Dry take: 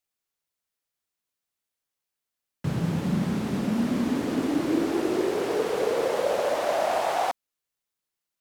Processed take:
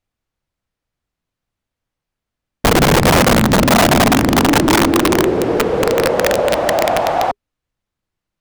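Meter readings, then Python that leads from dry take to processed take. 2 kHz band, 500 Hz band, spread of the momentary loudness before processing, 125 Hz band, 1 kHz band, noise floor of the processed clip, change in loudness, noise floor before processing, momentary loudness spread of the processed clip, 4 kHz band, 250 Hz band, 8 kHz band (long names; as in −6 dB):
+18.0 dB, +11.5 dB, 3 LU, +13.0 dB, +14.0 dB, −83 dBFS, +13.0 dB, below −85 dBFS, 5 LU, +18.5 dB, +11.0 dB, +20.0 dB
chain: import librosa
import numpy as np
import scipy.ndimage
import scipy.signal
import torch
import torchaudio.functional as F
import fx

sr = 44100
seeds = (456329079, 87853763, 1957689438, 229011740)

y = fx.riaa(x, sr, side='playback')
y = fx.notch(y, sr, hz=410.0, q=12.0)
y = (np.mod(10.0 ** (14.5 / 20.0) * y + 1.0, 2.0) - 1.0) / 10.0 ** (14.5 / 20.0)
y = y * librosa.db_to_amplitude(8.5)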